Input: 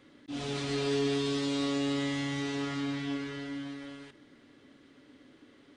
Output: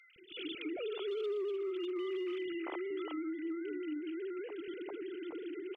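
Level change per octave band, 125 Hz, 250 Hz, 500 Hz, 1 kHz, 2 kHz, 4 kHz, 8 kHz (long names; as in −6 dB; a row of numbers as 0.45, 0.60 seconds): below −35 dB, −6.5 dB, −1.0 dB, −8.5 dB, −8.0 dB, −10.0 dB, below −30 dB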